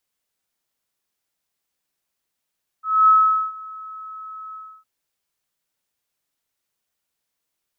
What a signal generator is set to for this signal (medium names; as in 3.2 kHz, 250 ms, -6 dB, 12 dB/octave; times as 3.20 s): ADSR sine 1.29 kHz, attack 247 ms, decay 442 ms, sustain -23.5 dB, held 1.71 s, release 301 ms -9 dBFS